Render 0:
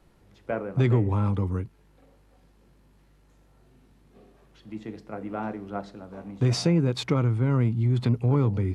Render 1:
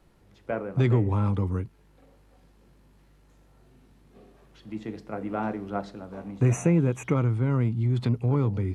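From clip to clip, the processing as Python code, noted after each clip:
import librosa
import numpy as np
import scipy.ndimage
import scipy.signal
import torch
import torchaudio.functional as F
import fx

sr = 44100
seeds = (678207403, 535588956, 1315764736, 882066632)

y = fx.spec_repair(x, sr, seeds[0], start_s=6.42, length_s=0.67, low_hz=2900.0, high_hz=5800.0, source='both')
y = fx.rider(y, sr, range_db=3, speed_s=2.0)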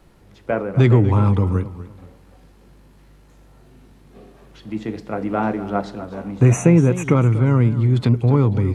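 y = fx.echo_warbled(x, sr, ms=243, feedback_pct=31, rate_hz=2.8, cents=97, wet_db=-15)
y = y * librosa.db_to_amplitude(8.5)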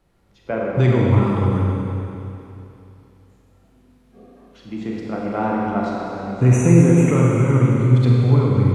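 y = fx.noise_reduce_blind(x, sr, reduce_db=8)
y = fx.rev_schroeder(y, sr, rt60_s=2.9, comb_ms=32, drr_db=-3.0)
y = y * librosa.db_to_amplitude(-4.0)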